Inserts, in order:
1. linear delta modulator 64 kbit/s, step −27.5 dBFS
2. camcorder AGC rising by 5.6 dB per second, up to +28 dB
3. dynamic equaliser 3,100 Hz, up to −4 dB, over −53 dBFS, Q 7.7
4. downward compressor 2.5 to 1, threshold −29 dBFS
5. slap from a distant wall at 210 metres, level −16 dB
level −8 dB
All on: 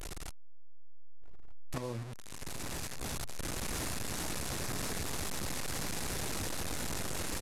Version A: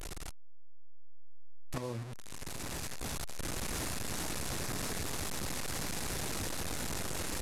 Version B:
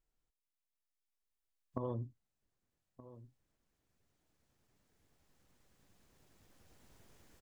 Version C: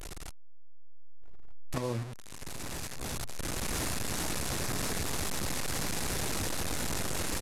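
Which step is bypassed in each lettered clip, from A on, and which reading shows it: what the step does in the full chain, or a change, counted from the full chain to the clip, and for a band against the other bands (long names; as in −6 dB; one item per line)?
5, echo-to-direct ratio −20.0 dB to none audible
1, 1 kHz band −5.0 dB
4, change in momentary loudness spread +1 LU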